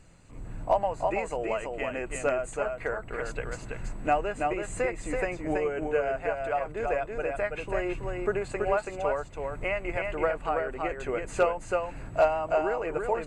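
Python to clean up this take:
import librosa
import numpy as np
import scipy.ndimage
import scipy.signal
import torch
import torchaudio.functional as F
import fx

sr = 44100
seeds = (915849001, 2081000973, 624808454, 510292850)

y = fx.fix_declip(x, sr, threshold_db=-13.5)
y = fx.fix_echo_inverse(y, sr, delay_ms=329, level_db=-4.0)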